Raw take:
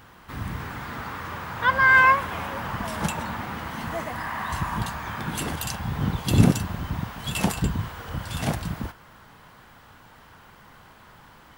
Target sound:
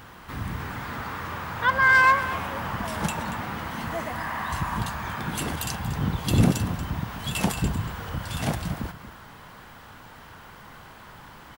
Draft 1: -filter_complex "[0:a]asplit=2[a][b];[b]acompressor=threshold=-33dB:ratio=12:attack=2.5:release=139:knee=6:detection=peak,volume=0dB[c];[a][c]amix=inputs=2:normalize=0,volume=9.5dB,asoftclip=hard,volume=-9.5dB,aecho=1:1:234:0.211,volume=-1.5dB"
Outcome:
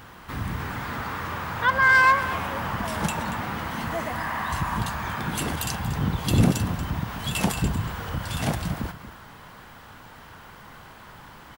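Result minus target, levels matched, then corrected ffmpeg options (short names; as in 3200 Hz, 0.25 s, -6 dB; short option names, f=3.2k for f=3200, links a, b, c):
compressor: peak gain reduction -8 dB
-filter_complex "[0:a]asplit=2[a][b];[b]acompressor=threshold=-41.5dB:ratio=12:attack=2.5:release=139:knee=6:detection=peak,volume=0dB[c];[a][c]amix=inputs=2:normalize=0,volume=9.5dB,asoftclip=hard,volume=-9.5dB,aecho=1:1:234:0.211,volume=-1.5dB"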